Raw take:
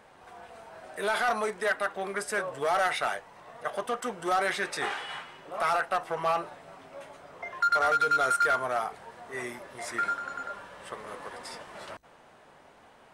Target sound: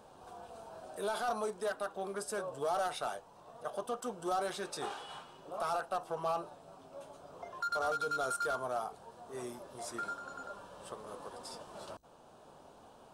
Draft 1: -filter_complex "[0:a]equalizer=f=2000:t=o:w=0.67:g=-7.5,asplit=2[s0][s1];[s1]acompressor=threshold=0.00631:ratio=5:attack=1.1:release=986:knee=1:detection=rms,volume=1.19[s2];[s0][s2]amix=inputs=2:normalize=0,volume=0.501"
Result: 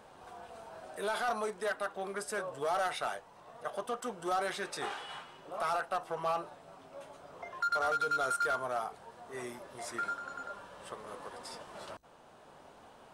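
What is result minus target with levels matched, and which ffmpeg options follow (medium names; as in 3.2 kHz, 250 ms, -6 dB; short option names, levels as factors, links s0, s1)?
2 kHz band +3.0 dB
-filter_complex "[0:a]equalizer=f=2000:t=o:w=0.67:g=-19.5,asplit=2[s0][s1];[s1]acompressor=threshold=0.00631:ratio=5:attack=1.1:release=986:knee=1:detection=rms,volume=1.19[s2];[s0][s2]amix=inputs=2:normalize=0,volume=0.501"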